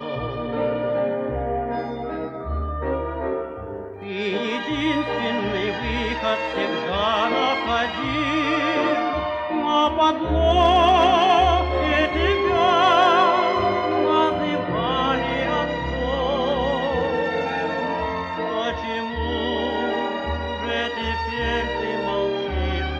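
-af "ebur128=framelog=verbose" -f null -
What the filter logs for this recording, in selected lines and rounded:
Integrated loudness:
  I:         -21.7 LUFS
  Threshold: -31.8 LUFS
Loudness range:
  LRA:         8.2 LU
  Threshold: -41.5 LUFS
  LRA low:   -26.0 LUFS
  LRA high:  -17.8 LUFS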